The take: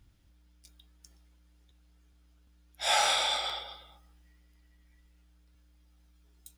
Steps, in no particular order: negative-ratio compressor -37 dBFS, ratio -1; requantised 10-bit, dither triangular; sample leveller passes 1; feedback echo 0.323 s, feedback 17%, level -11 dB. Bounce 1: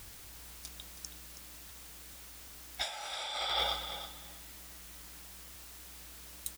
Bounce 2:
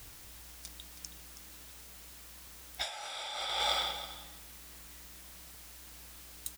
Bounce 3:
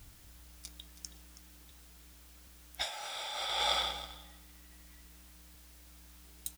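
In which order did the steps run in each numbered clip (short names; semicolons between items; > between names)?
sample leveller > requantised > negative-ratio compressor > feedback echo; sample leveller > feedback echo > requantised > negative-ratio compressor; feedback echo > sample leveller > negative-ratio compressor > requantised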